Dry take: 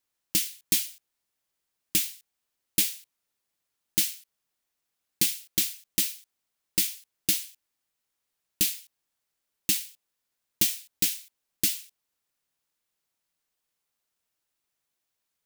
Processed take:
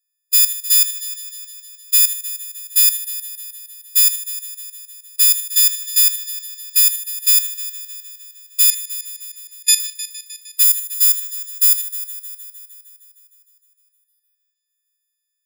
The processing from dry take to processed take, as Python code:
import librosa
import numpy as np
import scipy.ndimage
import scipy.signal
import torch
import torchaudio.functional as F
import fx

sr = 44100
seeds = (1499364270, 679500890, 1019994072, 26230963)

p1 = fx.freq_snap(x, sr, grid_st=6)
p2 = fx.lowpass(p1, sr, hz=9300.0, slope=12, at=(8.7, 9.8))
p3 = fx.peak_eq(p2, sr, hz=2900.0, db=-7.5, octaves=2.4, at=(10.63, 11.78))
p4 = fx.leveller(p3, sr, passes=1)
p5 = fx.level_steps(p4, sr, step_db=13)
p6 = scipy.signal.sosfilt(scipy.signal.ellip(4, 1.0, 80, 1700.0, 'highpass', fs=sr, output='sos'), p5)
p7 = p6 + fx.echo_heads(p6, sr, ms=154, heads='first and second', feedback_pct=60, wet_db=-17, dry=0)
y = p7 * librosa.db_to_amplitude(3.0)